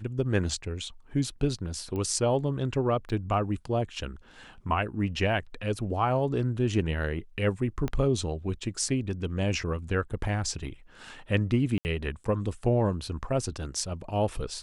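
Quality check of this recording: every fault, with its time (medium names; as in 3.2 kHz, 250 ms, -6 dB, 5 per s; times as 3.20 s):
1.96 s: pop -23 dBFS
3.09–3.10 s: dropout 5.9 ms
7.88 s: pop -18 dBFS
11.78–11.85 s: dropout 69 ms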